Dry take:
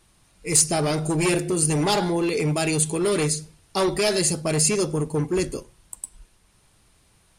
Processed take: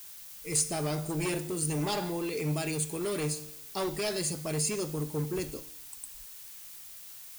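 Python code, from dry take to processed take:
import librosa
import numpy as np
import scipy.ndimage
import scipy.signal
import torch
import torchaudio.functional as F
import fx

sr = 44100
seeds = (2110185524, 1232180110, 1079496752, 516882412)

y = fx.comb_fb(x, sr, f0_hz=150.0, decay_s=0.83, harmonics='all', damping=0.0, mix_pct=60)
y = fx.dmg_noise_colour(y, sr, seeds[0], colour='blue', level_db=-44.0)
y = y * 10.0 ** (-3.0 / 20.0)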